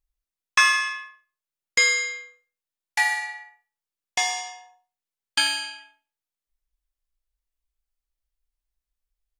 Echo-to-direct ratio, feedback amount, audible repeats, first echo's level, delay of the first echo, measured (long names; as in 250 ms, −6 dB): −22.5 dB, 27%, 2, −23.0 dB, 97 ms